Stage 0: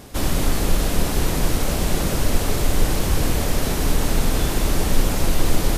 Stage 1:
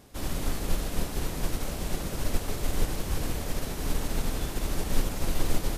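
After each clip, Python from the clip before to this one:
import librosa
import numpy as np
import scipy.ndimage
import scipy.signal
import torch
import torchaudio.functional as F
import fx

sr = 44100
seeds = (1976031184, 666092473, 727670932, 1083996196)

y = fx.upward_expand(x, sr, threshold_db=-22.0, expansion=1.5)
y = y * 10.0 ** (-6.5 / 20.0)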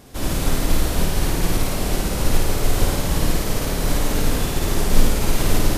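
y = fx.room_flutter(x, sr, wall_m=9.3, rt60_s=1.1)
y = y * 10.0 ** (7.5 / 20.0)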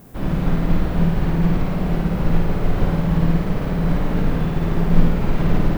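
y = scipy.signal.sosfilt(scipy.signal.butter(2, 2000.0, 'lowpass', fs=sr, output='sos'), x)
y = fx.peak_eq(y, sr, hz=170.0, db=13.5, octaves=0.39)
y = fx.dmg_noise_colour(y, sr, seeds[0], colour='violet', level_db=-52.0)
y = y * 10.0 ** (-1.0 / 20.0)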